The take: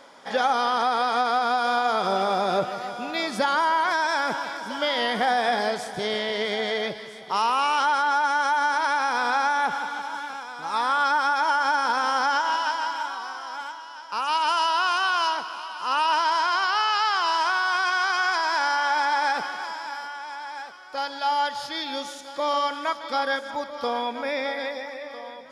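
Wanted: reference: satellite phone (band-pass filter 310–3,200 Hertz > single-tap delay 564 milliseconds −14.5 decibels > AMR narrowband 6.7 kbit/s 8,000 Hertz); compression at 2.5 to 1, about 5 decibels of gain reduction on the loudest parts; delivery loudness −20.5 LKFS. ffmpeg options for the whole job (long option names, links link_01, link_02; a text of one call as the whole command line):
ffmpeg -i in.wav -af "acompressor=threshold=-26dB:ratio=2.5,highpass=310,lowpass=3200,aecho=1:1:564:0.188,volume=9.5dB" -ar 8000 -c:a libopencore_amrnb -b:a 6700 out.amr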